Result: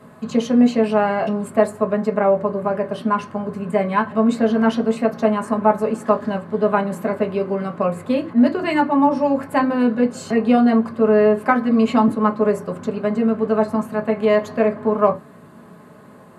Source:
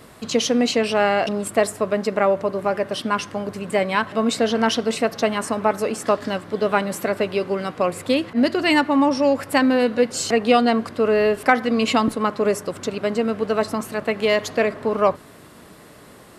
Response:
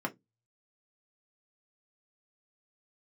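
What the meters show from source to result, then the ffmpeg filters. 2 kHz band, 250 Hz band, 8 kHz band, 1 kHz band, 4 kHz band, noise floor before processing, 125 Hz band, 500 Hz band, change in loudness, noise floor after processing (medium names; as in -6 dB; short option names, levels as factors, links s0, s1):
-3.5 dB, +4.5 dB, under -10 dB, +1.5 dB, -10.5 dB, -45 dBFS, +4.5 dB, +1.5 dB, +2.0 dB, -44 dBFS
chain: -filter_complex "[1:a]atrim=start_sample=2205,asetrate=36162,aresample=44100[s0];[0:a][s0]afir=irnorm=-1:irlink=0,volume=0.422"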